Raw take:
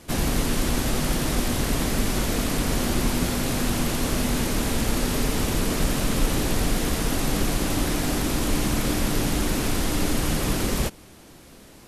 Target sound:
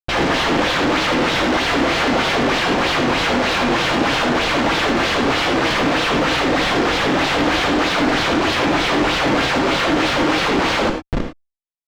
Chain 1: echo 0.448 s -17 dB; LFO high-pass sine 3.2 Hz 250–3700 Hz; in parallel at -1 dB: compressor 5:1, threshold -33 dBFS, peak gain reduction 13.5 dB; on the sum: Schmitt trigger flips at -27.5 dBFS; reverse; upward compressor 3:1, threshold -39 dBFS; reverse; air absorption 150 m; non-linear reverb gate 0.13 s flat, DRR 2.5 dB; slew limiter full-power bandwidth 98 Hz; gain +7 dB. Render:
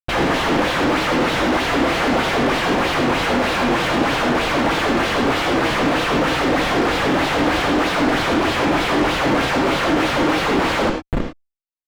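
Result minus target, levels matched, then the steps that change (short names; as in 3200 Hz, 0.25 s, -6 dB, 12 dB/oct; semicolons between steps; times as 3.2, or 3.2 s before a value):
slew limiter: distortion +17 dB
change: slew limiter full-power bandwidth 214.5 Hz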